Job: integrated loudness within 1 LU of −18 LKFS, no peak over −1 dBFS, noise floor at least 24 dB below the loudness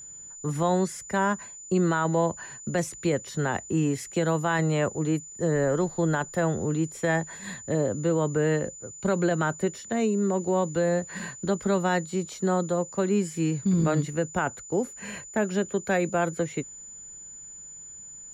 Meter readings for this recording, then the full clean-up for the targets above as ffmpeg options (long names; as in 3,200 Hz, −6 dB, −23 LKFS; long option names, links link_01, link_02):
interfering tone 7,000 Hz; level of the tone −41 dBFS; integrated loudness −27.0 LKFS; sample peak −14.5 dBFS; target loudness −18.0 LKFS
→ -af "bandreject=frequency=7000:width=30"
-af "volume=9dB"